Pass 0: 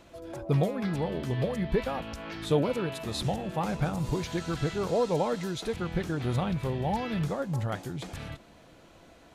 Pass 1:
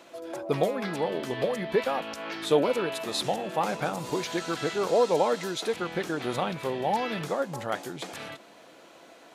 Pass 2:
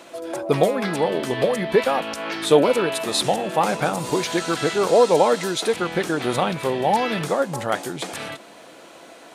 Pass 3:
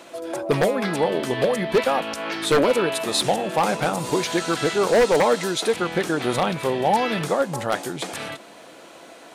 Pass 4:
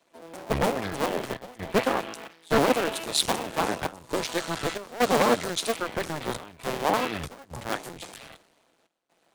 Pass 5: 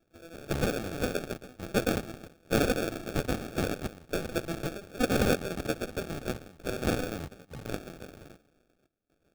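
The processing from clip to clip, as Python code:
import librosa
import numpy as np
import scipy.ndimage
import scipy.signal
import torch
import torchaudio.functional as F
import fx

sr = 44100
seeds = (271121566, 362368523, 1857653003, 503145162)

y1 = scipy.signal.sosfilt(scipy.signal.butter(2, 330.0, 'highpass', fs=sr, output='sos'), x)
y1 = y1 * 10.0 ** (5.0 / 20.0)
y2 = fx.peak_eq(y1, sr, hz=9000.0, db=6.5, octaves=0.33)
y2 = y2 * 10.0 ** (7.5 / 20.0)
y3 = 10.0 ** (-10.5 / 20.0) * (np.abs((y2 / 10.0 ** (-10.5 / 20.0) + 3.0) % 4.0 - 2.0) - 1.0)
y4 = fx.cycle_switch(y3, sr, every=2, mode='muted')
y4 = fx.step_gate(y4, sr, bpm=66, pattern='xxxxxx.xxx.', floor_db=-12.0, edge_ms=4.5)
y4 = fx.band_widen(y4, sr, depth_pct=70)
y4 = y4 * 10.0 ** (-3.0 / 20.0)
y5 = fx.sample_hold(y4, sr, seeds[0], rate_hz=1000.0, jitter_pct=0)
y5 = y5 * 10.0 ** (-4.0 / 20.0)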